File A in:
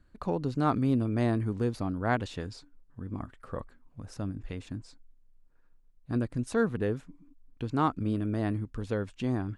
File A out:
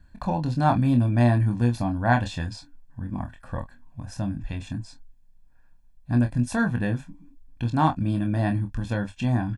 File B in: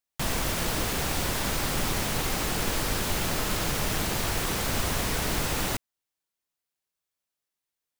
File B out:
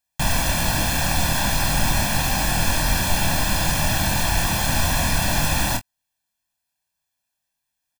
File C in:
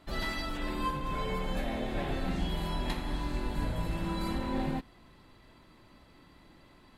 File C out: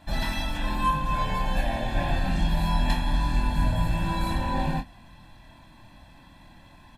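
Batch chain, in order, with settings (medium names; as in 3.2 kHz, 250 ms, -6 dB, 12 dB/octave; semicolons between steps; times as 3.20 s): comb 1.2 ms, depth 83%; early reflections 25 ms -6 dB, 45 ms -17 dB; trim +3.5 dB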